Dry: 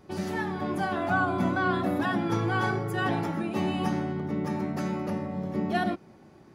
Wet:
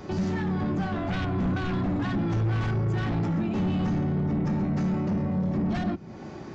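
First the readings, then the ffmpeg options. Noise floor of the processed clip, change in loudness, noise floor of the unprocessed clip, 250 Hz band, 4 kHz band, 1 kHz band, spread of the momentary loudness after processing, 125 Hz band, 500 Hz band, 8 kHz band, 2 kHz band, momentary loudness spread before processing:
-41 dBFS, +1.5 dB, -54 dBFS, +2.5 dB, -3.0 dB, -6.0 dB, 3 LU, +6.5 dB, -2.5 dB, n/a, -7.0 dB, 5 LU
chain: -filter_complex "[0:a]aresample=16000,aeval=exprs='0.224*sin(PI/2*3.16*val(0)/0.224)':c=same,aresample=44100,acrossover=split=210[a][b];[b]acompressor=threshold=-34dB:ratio=4[c];[a][c]amix=inputs=2:normalize=0,asoftclip=type=tanh:threshold=-21dB"

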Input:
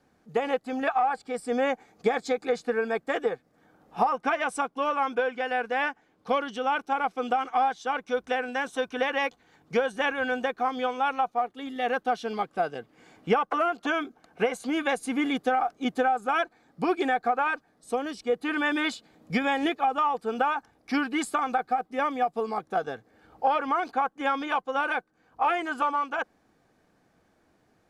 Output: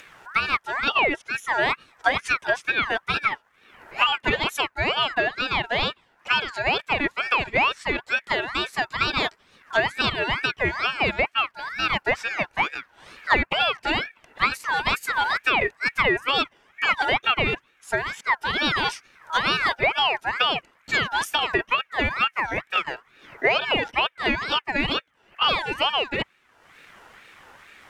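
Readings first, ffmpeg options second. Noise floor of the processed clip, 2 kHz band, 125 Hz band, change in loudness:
-63 dBFS, +8.5 dB, +11.5 dB, +4.5 dB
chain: -af "acompressor=mode=upward:threshold=-39dB:ratio=2.5,aeval=exprs='0.299*(cos(1*acos(clip(val(0)/0.299,-1,1)))-cos(1*PI/2))+0.0211*(cos(2*acos(clip(val(0)/0.299,-1,1)))-cos(2*PI/2))':c=same,aeval=exprs='val(0)*sin(2*PI*1600*n/s+1600*0.3/2.2*sin(2*PI*2.2*n/s))':c=same,volume=6dB"

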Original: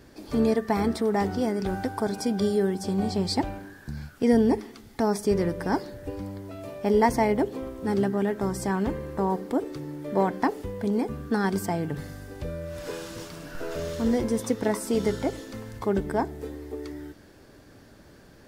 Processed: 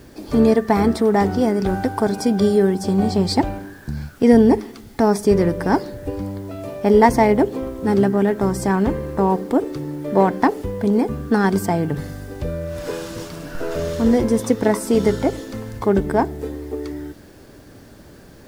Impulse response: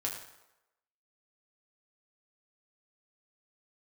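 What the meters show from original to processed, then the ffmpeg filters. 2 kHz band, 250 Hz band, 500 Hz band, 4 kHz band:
+7.0 dB, +8.5 dB, +8.5 dB, +5.0 dB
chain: -filter_complex "[0:a]asplit=2[a][b];[b]adynamicsmooth=sensitivity=3:basefreq=1.1k,volume=-8dB[c];[a][c]amix=inputs=2:normalize=0,acrusher=bits=9:mix=0:aa=0.000001,volume=5.5dB"

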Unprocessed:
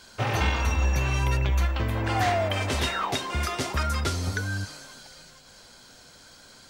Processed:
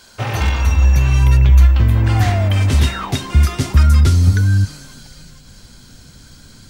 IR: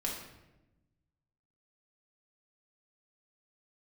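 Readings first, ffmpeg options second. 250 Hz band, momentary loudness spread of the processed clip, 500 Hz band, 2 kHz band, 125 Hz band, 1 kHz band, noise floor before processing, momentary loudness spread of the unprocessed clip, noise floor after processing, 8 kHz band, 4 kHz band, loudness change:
+10.0 dB, 7 LU, +1.5 dB, +3.5 dB, +15.5 dB, +2.0 dB, -51 dBFS, 9 LU, -44 dBFS, +5.5 dB, +4.0 dB, +12.0 dB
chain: -af "aeval=exprs='0.188*(abs(mod(val(0)/0.188+3,4)-2)-1)':c=same,asubboost=boost=7.5:cutoff=220,crystalizer=i=0.5:c=0,volume=3.5dB"

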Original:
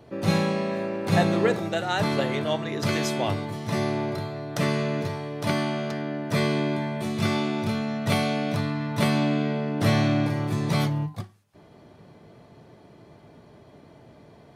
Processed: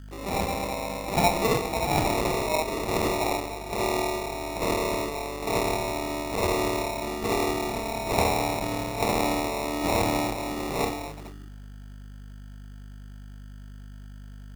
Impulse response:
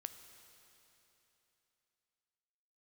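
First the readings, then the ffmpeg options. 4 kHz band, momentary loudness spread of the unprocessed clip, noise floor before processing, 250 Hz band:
-0.5 dB, 8 LU, -52 dBFS, -5.5 dB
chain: -filter_complex "[0:a]highpass=320,asplit=2[a][b];[1:a]atrim=start_sample=2205,lowpass=3.2k,adelay=65[c];[b][c]afir=irnorm=-1:irlink=0,volume=5.5dB[d];[a][d]amix=inputs=2:normalize=0,afwtdn=0.0251,aemphasis=mode=production:type=bsi,aeval=exprs='val(0)+0.00891*(sin(2*PI*50*n/s)+sin(2*PI*2*50*n/s)/2+sin(2*PI*3*50*n/s)/3+sin(2*PI*4*50*n/s)/4+sin(2*PI*5*50*n/s)/5)':c=same,equalizer=f=540:w=6.6:g=-9.5,acrusher=samples=28:mix=1:aa=0.000001"

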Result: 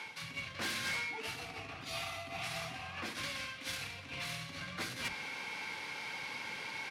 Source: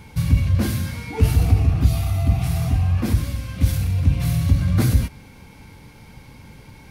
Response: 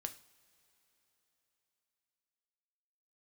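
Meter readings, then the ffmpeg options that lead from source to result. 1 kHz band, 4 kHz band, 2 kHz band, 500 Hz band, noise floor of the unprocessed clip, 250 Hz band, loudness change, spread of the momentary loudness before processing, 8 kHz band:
-6.5 dB, -2.5 dB, -0.5 dB, -13.5 dB, -45 dBFS, -24.5 dB, -19.0 dB, 6 LU, -10.0 dB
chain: -filter_complex "[0:a]lowpass=2.5k,areverse,acompressor=threshold=-29dB:ratio=12,areverse,aderivative,acrossover=split=130[a][b];[b]aeval=exprs='0.0075*sin(PI/2*2.82*val(0)/0.0075)':c=same[c];[a][c]amix=inputs=2:normalize=0,acrossover=split=210[d][e];[d]adelay=50[f];[f][e]amix=inputs=2:normalize=0,volume=10.5dB"

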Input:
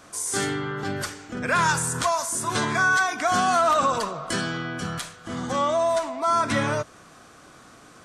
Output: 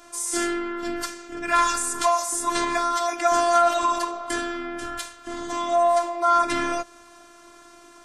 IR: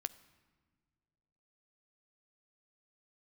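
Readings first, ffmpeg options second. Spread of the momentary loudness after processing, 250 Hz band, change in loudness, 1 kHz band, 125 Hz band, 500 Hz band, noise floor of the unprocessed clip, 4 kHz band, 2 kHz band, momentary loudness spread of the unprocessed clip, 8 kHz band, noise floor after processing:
13 LU, 0.0 dB, +0.5 dB, +1.5 dB, under -15 dB, +1.5 dB, -50 dBFS, -1.0 dB, -5.5 dB, 12 LU, +0.5 dB, -49 dBFS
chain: -af "acontrast=39,afftfilt=real='hypot(re,im)*cos(PI*b)':imag='0':win_size=512:overlap=0.75,volume=-1.5dB"

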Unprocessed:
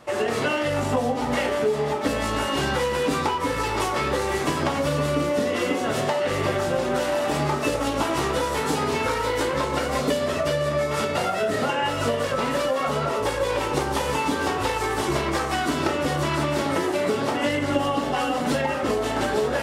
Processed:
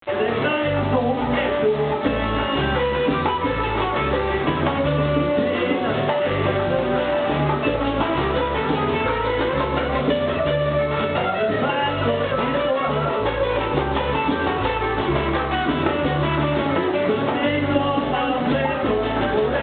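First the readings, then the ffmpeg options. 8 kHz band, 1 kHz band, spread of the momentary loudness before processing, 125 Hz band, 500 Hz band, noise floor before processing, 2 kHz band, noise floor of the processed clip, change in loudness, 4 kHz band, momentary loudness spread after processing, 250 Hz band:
under -40 dB, +2.5 dB, 1 LU, +5.0 dB, +3.0 dB, -27 dBFS, +2.5 dB, -24 dBFS, +3.0 dB, +1.0 dB, 1 LU, +4.0 dB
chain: -af "lowshelf=f=250:g=3,aresample=8000,acrusher=bits=6:mix=0:aa=0.000001,aresample=44100,volume=2.5dB"

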